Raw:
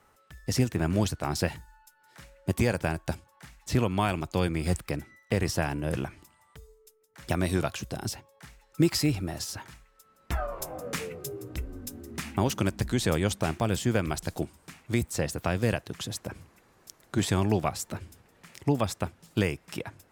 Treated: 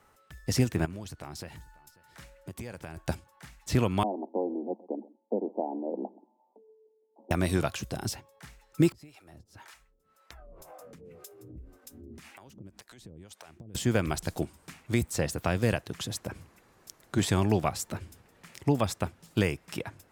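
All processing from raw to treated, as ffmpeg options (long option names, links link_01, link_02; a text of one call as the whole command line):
ffmpeg -i in.wav -filter_complex "[0:a]asettb=1/sr,asplit=3[link_01][link_02][link_03];[link_01]atrim=end=0.854[link_04];[link_02]atrim=start=0.85:end=2.97,asetpts=PTS-STARTPTS,afade=type=in:duration=0.004:curve=qsin,afade=type=out:start_time=2.116:duration=0.004:curve=qsin,acompressor=threshold=-41dB:ratio=3:attack=3.2:release=140:knee=1:detection=peak,aecho=1:1:541:0.075,atrim=end_sample=93492[link_05];[link_03]atrim=start=2.966[link_06];[link_04][link_05]acrossfade=duration=0.004:curve1=hsin:curve2=qsin[link_07];[link_07][link_06]acrossfade=duration=0.004:curve1=qsin:curve2=hsin,asettb=1/sr,asplit=3[link_08][link_09][link_10];[link_08]atrim=end=4.034[link_11];[link_09]atrim=start=4.03:end=7.31,asetpts=PTS-STARTPTS,afade=type=in:duration=0.004:curve=qsin,afade=type=out:start_time=3.276:duration=0.004:curve=qsin,asuperpass=centerf=440:order=20:qfactor=0.63,aecho=1:1:130:0.0841,atrim=end_sample=144648[link_12];[link_10]atrim=start=7.306[link_13];[link_11][link_12]acrossfade=duration=0.004:curve1=hsin:curve2=qsin[link_14];[link_14][link_13]acrossfade=duration=0.004:curve1=qsin:curve2=hsin,asettb=1/sr,asplit=3[link_15][link_16][link_17];[link_15]atrim=end=8.924[link_18];[link_16]atrim=start=8.92:end=13.75,asetpts=PTS-STARTPTS,afade=type=in:duration=0.004:curve=qsin,afade=type=out:start_time=4.826:duration=0.004:curve=qsin,acompressor=threshold=-40dB:ratio=10:attack=3.2:release=140:knee=1:detection=peak,acrossover=split=480[link_19][link_20];[link_19]aeval=exprs='val(0)*(1-1/2+1/2*cos(2*PI*1.9*n/s))':channel_layout=same[link_21];[link_20]aeval=exprs='val(0)*(1-1/2-1/2*cos(2*PI*1.9*n/s))':channel_layout=same[link_22];[link_21][link_22]amix=inputs=2:normalize=0[link_23];[link_17]atrim=start=13.746[link_24];[link_18][link_23]acrossfade=duration=0.004:curve1=hsin:curve2=qsin[link_25];[link_25][link_24]acrossfade=duration=0.004:curve1=qsin:curve2=hsin" out.wav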